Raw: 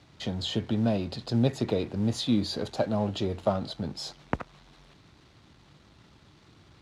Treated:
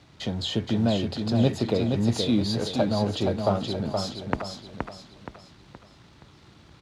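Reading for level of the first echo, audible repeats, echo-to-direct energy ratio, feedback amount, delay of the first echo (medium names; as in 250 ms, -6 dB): -5.0 dB, 4, -4.5 dB, 39%, 472 ms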